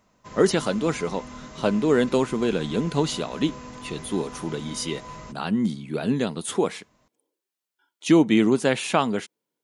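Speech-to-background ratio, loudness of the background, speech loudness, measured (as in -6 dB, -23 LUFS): 16.5 dB, -40.5 LUFS, -24.0 LUFS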